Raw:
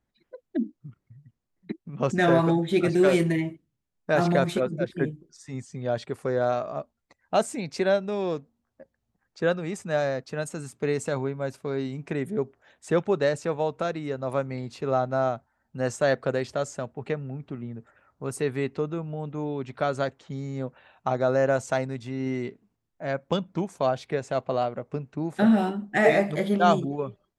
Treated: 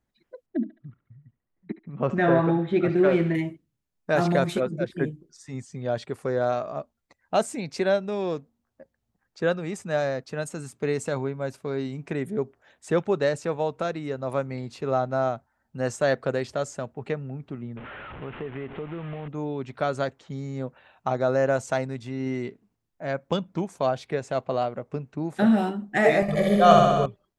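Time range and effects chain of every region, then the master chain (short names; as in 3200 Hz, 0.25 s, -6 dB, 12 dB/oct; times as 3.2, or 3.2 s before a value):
0.46–3.35 LPF 2200 Hz + thinning echo 71 ms, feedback 69%, high-pass 1000 Hz, level -11 dB
17.77–19.28 delta modulation 16 kbps, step -34 dBFS + compressor 5:1, threshold -30 dBFS
26.22–27.06 low shelf 67 Hz +11.5 dB + comb 1.7 ms, depth 75% + flutter echo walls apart 10.9 m, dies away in 1.4 s
whole clip: dry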